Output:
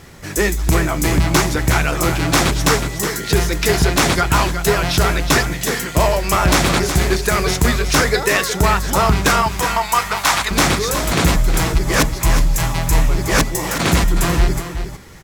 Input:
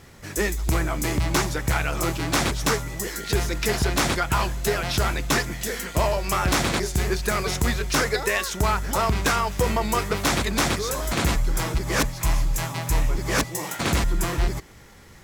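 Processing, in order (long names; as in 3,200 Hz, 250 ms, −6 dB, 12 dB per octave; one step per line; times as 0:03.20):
0:09.42–0:10.51: low shelf with overshoot 600 Hz −12 dB, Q 1.5
single-tap delay 367 ms −9 dB
on a send at −23 dB: convolution reverb RT60 0.30 s, pre-delay 3 ms
on the sum: level +7 dB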